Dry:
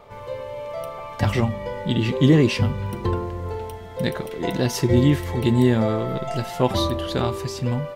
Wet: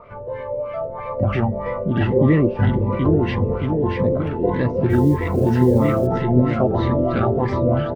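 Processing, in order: in parallel at +2 dB: limiter -16.5 dBFS, peak gain reduction 11 dB; on the sum: bouncing-ball echo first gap 0.78 s, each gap 0.8×, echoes 5; LFO low-pass sine 3.1 Hz 500–2000 Hz; 4.89–6.07 modulation noise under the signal 35 dB; cascading phaser rising 1.7 Hz; gain -4 dB

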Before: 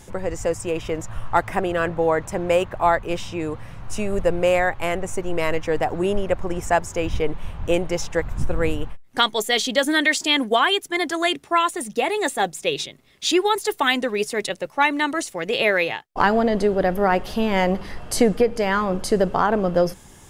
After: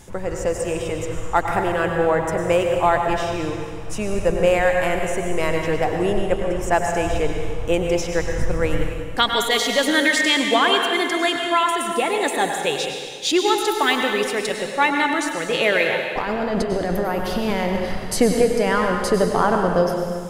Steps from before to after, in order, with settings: 16.07–18.07 negative-ratio compressor -23 dBFS, ratio -1; plate-style reverb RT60 1.8 s, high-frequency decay 0.95×, pre-delay 85 ms, DRR 2.5 dB

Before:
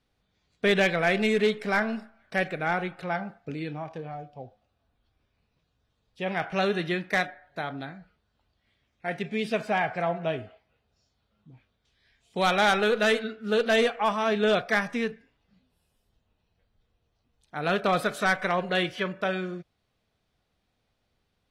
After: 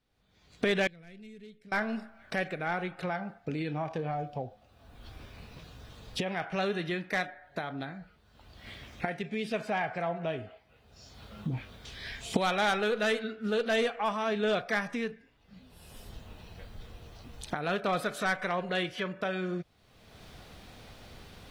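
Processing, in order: recorder AGC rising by 33 dB/s; 0.87–1.72 passive tone stack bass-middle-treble 10-0-1; in parallel at -11 dB: soft clip -20 dBFS, distortion -14 dB; on the sum: gain -7 dB

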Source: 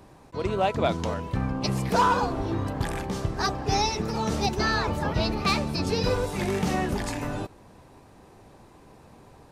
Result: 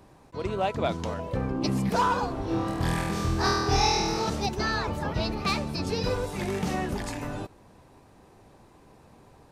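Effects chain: 1.18–1.89 bell 690 Hz -> 200 Hz +15 dB 0.44 oct; 2.45–4.3 flutter echo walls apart 4.2 m, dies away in 1.2 s; gain -3 dB

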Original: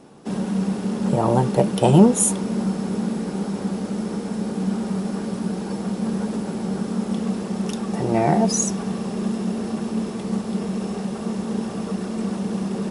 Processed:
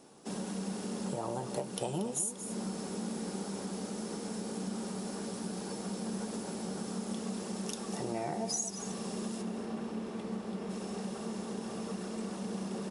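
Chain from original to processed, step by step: tone controls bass -6 dB, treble +9 dB, from 9.41 s treble -5 dB, from 10.69 s treble +4 dB; compressor 5:1, threshold -24 dBFS, peak gain reduction 15.5 dB; echo 0.232 s -11 dB; gain -9 dB

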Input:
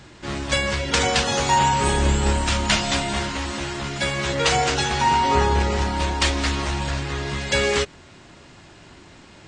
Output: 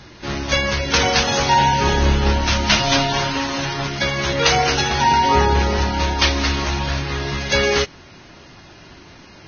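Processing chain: 2.79–3.87 comb 7.4 ms, depth 86%; gain +3 dB; Vorbis 16 kbps 16000 Hz

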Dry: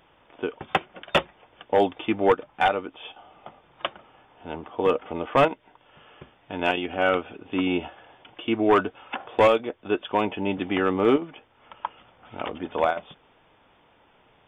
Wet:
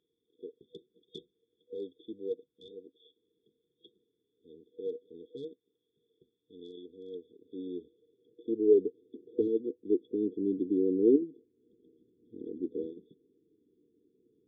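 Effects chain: band-pass sweep 1100 Hz -> 330 Hz, 7.05–9.3; FFT band-reject 490–3300 Hz

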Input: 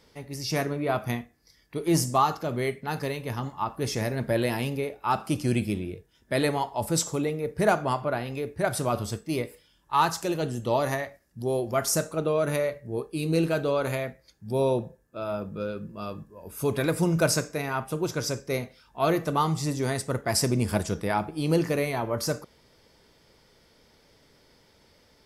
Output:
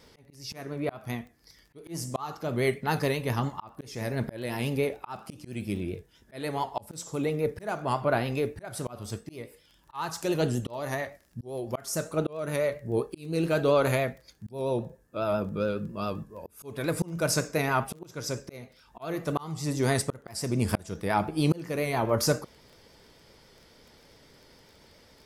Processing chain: vibrato 7.3 Hz 50 cents; auto swell 0.559 s; crackle 20/s -47 dBFS; gain +3.5 dB

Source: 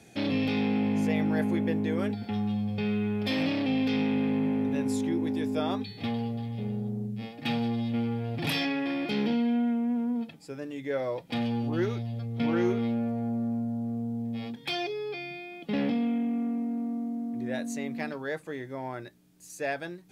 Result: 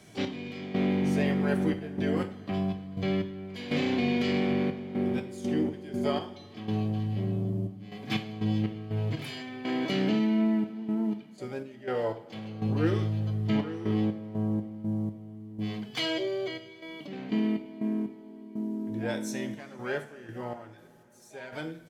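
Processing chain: harmoniser +7 st -10 dB; speakerphone echo 90 ms, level -17 dB; step gate "x..xxxx.x.x." 66 bpm -12 dB; on a send at -6 dB: reverb, pre-delay 3 ms; on the sum: speed mistake 48 kHz file played as 44.1 kHz

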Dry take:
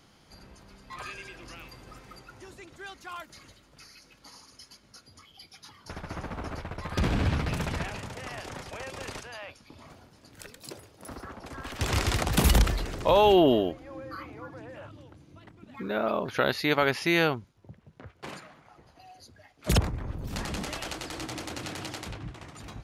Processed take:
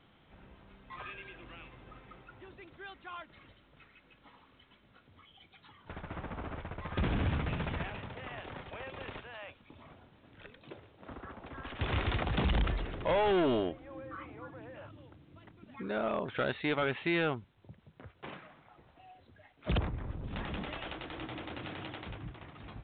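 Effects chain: overloaded stage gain 20.5 dB; gain -4.5 dB; A-law 64 kbps 8000 Hz

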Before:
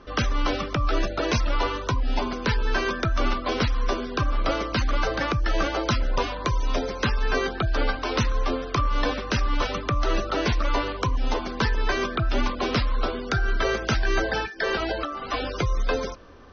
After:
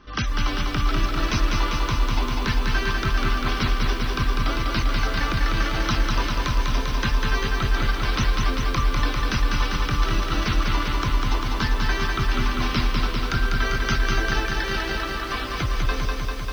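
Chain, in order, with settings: bell 530 Hz -12 dB 1 oct; on a send: reverse echo 39 ms -18 dB; on the sum: lo-fi delay 0.198 s, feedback 80%, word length 8-bit, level -3 dB

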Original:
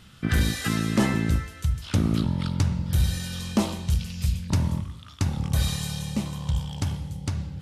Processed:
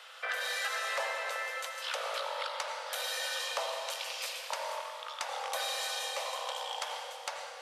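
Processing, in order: steep high-pass 490 Hz 96 dB/oct; high shelf 4500 Hz -10.5 dB; compressor 6:1, threshold -40 dBFS, peak gain reduction 13 dB; soft clip -27.5 dBFS, distortion -26 dB; reverb RT60 2.7 s, pre-delay 78 ms, DRR 3.5 dB; gain +7.5 dB

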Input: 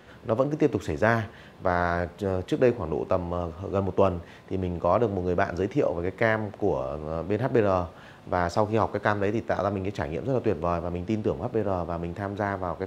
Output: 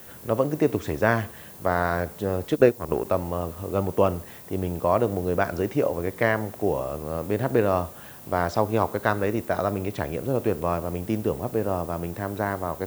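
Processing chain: 2.52–3.05 transient shaper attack +6 dB, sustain -12 dB; added noise violet -47 dBFS; gain +1 dB

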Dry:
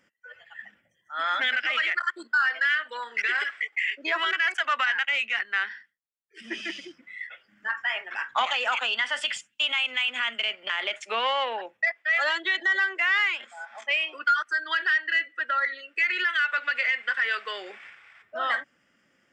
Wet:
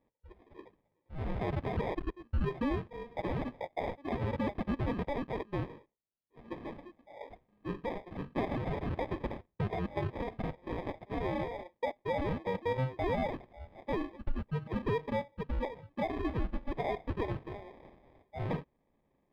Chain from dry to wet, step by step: sample-and-hold 31×; air absorption 410 m; gain -7 dB

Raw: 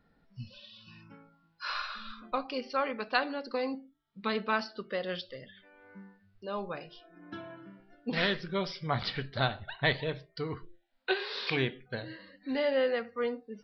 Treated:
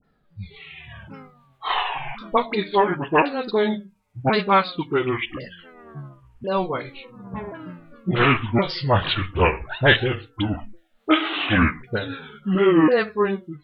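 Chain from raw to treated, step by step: repeated pitch sweeps -9 st, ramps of 1.073 s; AGC gain up to 11 dB; dispersion highs, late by 43 ms, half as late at 1300 Hz; gain +2.5 dB

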